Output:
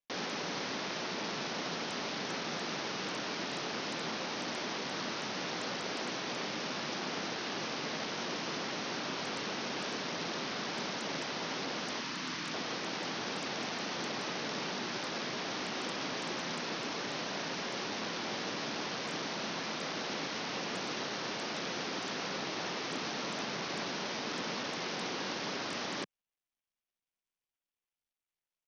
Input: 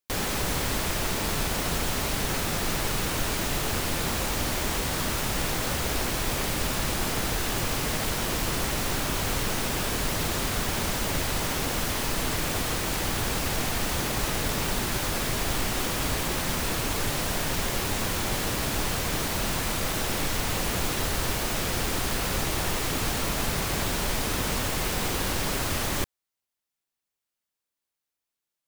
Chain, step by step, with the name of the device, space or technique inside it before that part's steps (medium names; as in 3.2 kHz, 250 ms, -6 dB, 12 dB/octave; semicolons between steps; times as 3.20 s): steep low-pass 10 kHz 36 dB/octave; 12.00–12.53 s: high-order bell 550 Hz -8 dB 1.3 oct; Bluetooth headset (high-pass 180 Hz 24 dB/octave; resampled via 16 kHz; trim -7 dB; SBC 64 kbps 48 kHz)